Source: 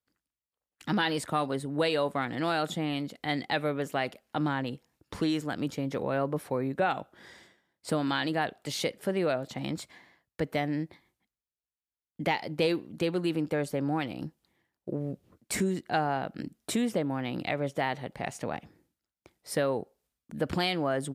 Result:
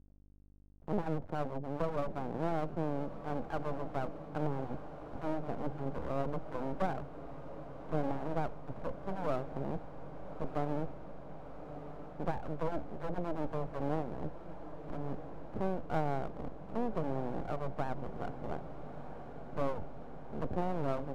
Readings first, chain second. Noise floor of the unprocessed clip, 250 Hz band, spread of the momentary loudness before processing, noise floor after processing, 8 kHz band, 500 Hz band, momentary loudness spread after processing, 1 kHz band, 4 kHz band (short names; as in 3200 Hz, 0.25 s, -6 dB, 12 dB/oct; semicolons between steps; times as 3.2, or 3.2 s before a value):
under -85 dBFS, -7.5 dB, 10 LU, -48 dBFS, under -20 dB, -6.0 dB, 12 LU, -6.0 dB, -22.5 dB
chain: minimum comb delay 1.3 ms; inverse Chebyshev low-pass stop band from 4000 Hz, stop band 80 dB; in parallel at +1.5 dB: compressor, threshold -44 dBFS, peak gain reduction 16 dB; on the sum: hum 50 Hz, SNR 23 dB; half-wave rectifier; on a send: diffused feedback echo 1.278 s, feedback 74%, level -12 dB; on the sum: gain +1 dB